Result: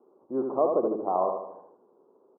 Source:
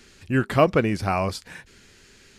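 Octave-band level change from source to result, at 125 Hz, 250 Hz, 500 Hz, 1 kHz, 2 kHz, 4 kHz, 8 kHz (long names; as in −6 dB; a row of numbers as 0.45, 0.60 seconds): below −25 dB, −7.5 dB, −2.0 dB, −3.0 dB, below −35 dB, below −40 dB, below −35 dB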